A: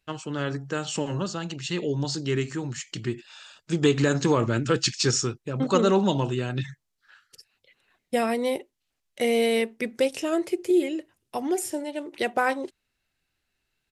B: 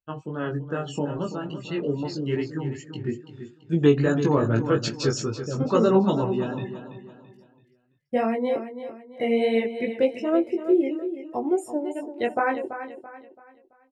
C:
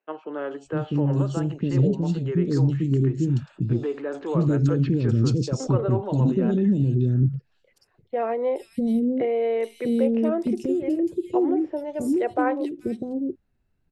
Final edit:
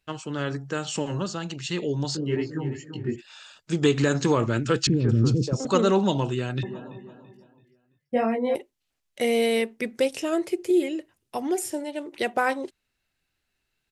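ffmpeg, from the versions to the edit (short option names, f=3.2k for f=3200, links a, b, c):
-filter_complex "[1:a]asplit=2[a][b];[0:a]asplit=4[c][d][e][f];[c]atrim=end=2.172[g];[a]atrim=start=2.168:end=3.162[h];[d]atrim=start=3.158:end=4.872[i];[2:a]atrim=start=4.868:end=5.652[j];[e]atrim=start=5.648:end=6.632[k];[b]atrim=start=6.628:end=8.552[l];[f]atrim=start=8.548[m];[g][h]acrossfade=d=0.004:c1=hsin:c2=hsin[n];[n][i]acrossfade=d=0.004:c1=hsin:c2=hsin[o];[o][j]acrossfade=d=0.004:c1=hsin:c2=hsin[p];[p][k]acrossfade=d=0.004:c1=hsin:c2=hsin[q];[q][l]acrossfade=d=0.004:c1=hsin:c2=hsin[r];[r][m]acrossfade=d=0.004:c1=hsin:c2=hsin"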